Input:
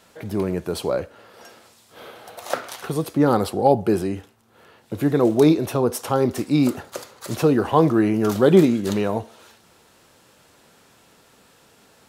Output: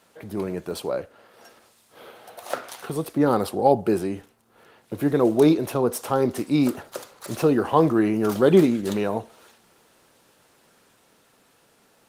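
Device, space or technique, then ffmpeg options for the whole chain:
video call: -af "highpass=f=150:p=1,dynaudnorm=f=620:g=9:m=5.31,volume=0.668" -ar 48000 -c:a libopus -b:a 24k

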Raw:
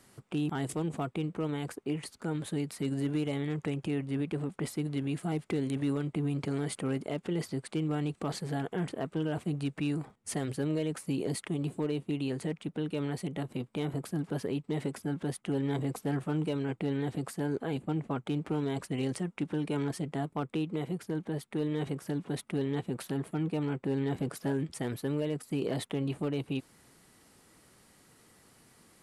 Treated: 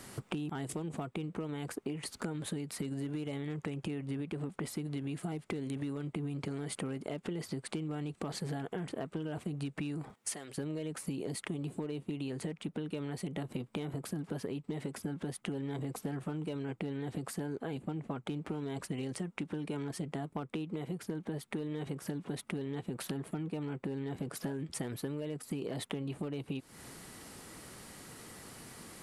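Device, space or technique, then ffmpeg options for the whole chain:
serial compression, leveller first: -filter_complex "[0:a]acompressor=threshold=0.0178:ratio=2,acompressor=threshold=0.00501:ratio=6,asettb=1/sr,asplit=3[s0][s1][s2];[s0]atrim=end=10.144[s3];[s1]atrim=start=10.14:end=10.58,asetpts=PTS-STARTPTS,afade=t=in:d=0.004:c=qsin,afade=t=out:st=0.436:d=0.004:c=qsin,highpass=f=750:p=1[s4];[s2]atrim=start=10.576[s5];[s3][s4]acrossfade=d=0.004:c1=hsin:c2=qsin[s6];[s6][s5]acrossfade=d=0.004:c1=qsin:c2=hsin,volume=3.35"

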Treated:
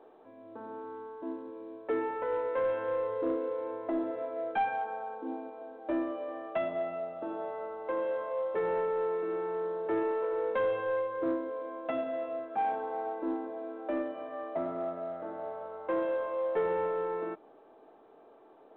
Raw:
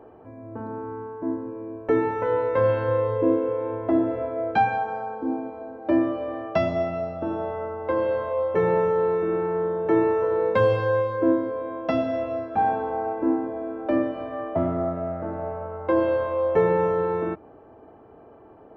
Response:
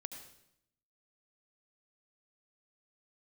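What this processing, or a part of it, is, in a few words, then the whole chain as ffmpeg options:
telephone: -af "highpass=330,lowpass=3200,asoftclip=type=tanh:threshold=0.178,volume=0.447" -ar 8000 -c:a pcm_mulaw

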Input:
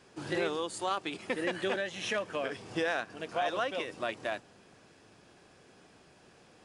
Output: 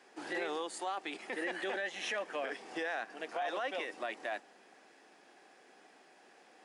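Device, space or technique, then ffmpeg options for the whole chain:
laptop speaker: -af "highpass=f=250:w=0.5412,highpass=f=250:w=1.3066,equalizer=f=780:t=o:w=0.32:g=8,equalizer=f=1900:t=o:w=0.51:g=7,alimiter=level_in=1.06:limit=0.0631:level=0:latency=1:release=16,volume=0.944,volume=0.668"

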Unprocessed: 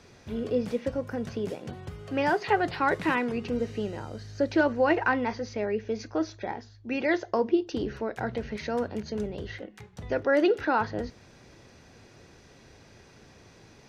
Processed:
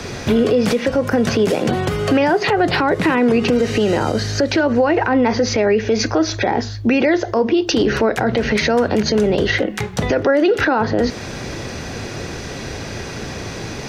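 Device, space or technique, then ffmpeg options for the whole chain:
mastering chain: -filter_complex "[0:a]equalizer=f=940:t=o:w=0.22:g=-2,acrossover=split=170|730[s0][s1][s2];[s0]acompressor=threshold=0.00282:ratio=4[s3];[s1]acompressor=threshold=0.0251:ratio=4[s4];[s2]acompressor=threshold=0.0112:ratio=4[s5];[s3][s4][s5]amix=inputs=3:normalize=0,acompressor=threshold=0.0158:ratio=2,alimiter=level_in=39.8:limit=0.891:release=50:level=0:latency=1,volume=0.473"

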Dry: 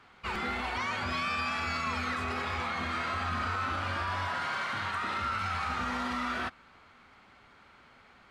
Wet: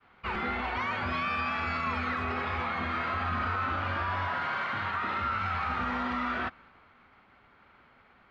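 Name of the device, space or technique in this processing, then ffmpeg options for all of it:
hearing-loss simulation: -af "lowpass=2800,agate=range=0.0224:threshold=0.002:ratio=3:detection=peak,volume=1.26"

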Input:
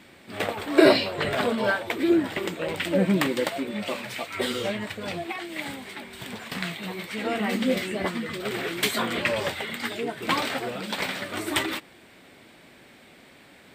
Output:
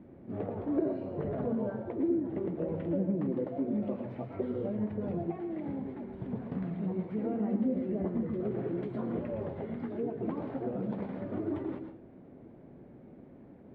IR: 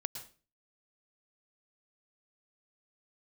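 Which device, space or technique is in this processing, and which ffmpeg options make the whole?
television next door: -filter_complex "[0:a]acompressor=threshold=0.0316:ratio=5,lowpass=430[s0];[1:a]atrim=start_sample=2205[s1];[s0][s1]afir=irnorm=-1:irlink=0,volume=1.68"

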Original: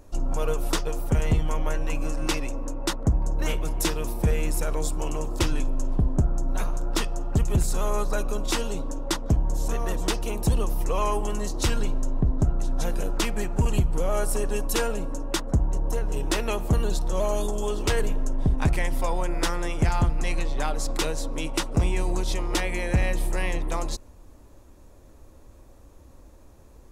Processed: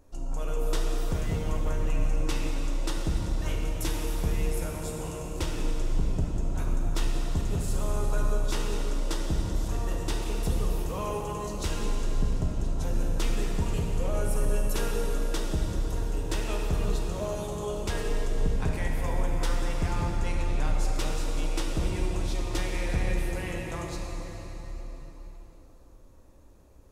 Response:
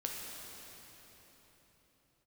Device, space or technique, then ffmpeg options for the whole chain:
cathedral: -filter_complex "[1:a]atrim=start_sample=2205[s0];[0:a][s0]afir=irnorm=-1:irlink=0,volume=0.447"

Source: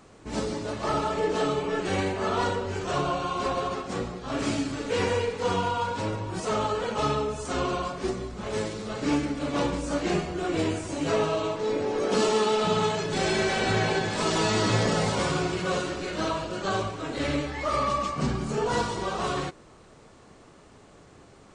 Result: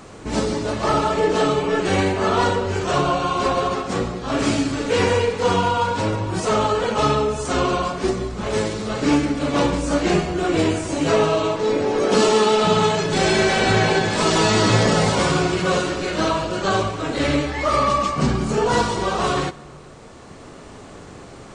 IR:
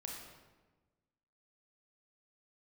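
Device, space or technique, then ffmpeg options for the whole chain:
ducked reverb: -filter_complex "[0:a]asplit=3[s0][s1][s2];[1:a]atrim=start_sample=2205[s3];[s1][s3]afir=irnorm=-1:irlink=0[s4];[s2]apad=whole_len=950156[s5];[s4][s5]sidechaincompress=threshold=0.00891:ratio=8:attack=16:release=998,volume=1.33[s6];[s0][s6]amix=inputs=2:normalize=0,volume=2.24"

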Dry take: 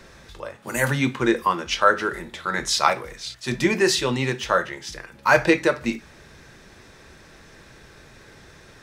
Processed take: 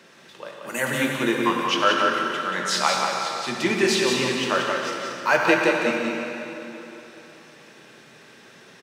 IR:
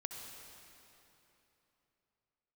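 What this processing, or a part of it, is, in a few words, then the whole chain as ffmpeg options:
PA in a hall: -filter_complex "[0:a]highpass=f=160:w=0.5412,highpass=f=160:w=1.3066,equalizer=f=2900:t=o:w=0.39:g=7,aecho=1:1:182:0.562[s0];[1:a]atrim=start_sample=2205[s1];[s0][s1]afir=irnorm=-1:irlink=0"

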